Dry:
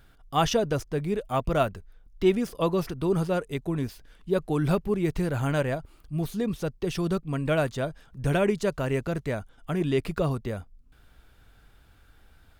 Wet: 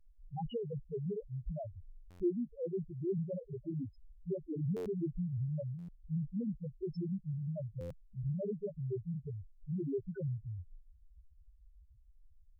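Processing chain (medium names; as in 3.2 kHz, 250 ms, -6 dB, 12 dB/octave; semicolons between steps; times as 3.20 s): dynamic bell 710 Hz, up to -8 dB, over -43 dBFS, Q 3.4; compression 2:1, threshold -35 dBFS, peak gain reduction 10.5 dB; loudest bins only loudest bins 1; buffer glitch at 2.10/4.76/5.78/7.80 s, samples 512, times 8; warped record 45 rpm, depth 100 cents; trim +3.5 dB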